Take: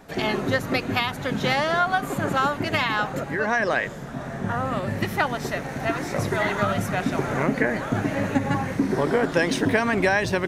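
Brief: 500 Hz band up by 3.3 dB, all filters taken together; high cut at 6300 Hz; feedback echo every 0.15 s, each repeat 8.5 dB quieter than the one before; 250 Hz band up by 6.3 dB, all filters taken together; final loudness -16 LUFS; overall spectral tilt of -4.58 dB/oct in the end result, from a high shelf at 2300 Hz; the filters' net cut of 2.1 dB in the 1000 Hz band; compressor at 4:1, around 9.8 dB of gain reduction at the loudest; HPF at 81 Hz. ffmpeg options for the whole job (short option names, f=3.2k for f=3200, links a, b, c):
-af "highpass=81,lowpass=6.3k,equalizer=f=250:t=o:g=7,equalizer=f=500:t=o:g=3.5,equalizer=f=1k:t=o:g=-6,highshelf=f=2.3k:g=4.5,acompressor=threshold=-23dB:ratio=4,aecho=1:1:150|300|450|600:0.376|0.143|0.0543|0.0206,volume=10dB"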